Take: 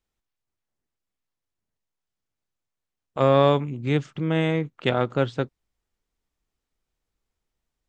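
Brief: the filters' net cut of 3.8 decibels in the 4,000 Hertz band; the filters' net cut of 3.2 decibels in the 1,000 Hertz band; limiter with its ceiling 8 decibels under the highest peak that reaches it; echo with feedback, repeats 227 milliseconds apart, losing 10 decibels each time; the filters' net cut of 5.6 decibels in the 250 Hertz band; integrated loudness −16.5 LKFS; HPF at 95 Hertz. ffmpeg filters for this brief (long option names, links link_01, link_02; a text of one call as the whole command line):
ffmpeg -i in.wav -af "highpass=95,equalizer=frequency=250:width_type=o:gain=-8,equalizer=frequency=1000:width_type=o:gain=-3.5,equalizer=frequency=4000:width_type=o:gain=-4.5,alimiter=limit=-17dB:level=0:latency=1,aecho=1:1:227|454|681|908:0.316|0.101|0.0324|0.0104,volume=13.5dB" out.wav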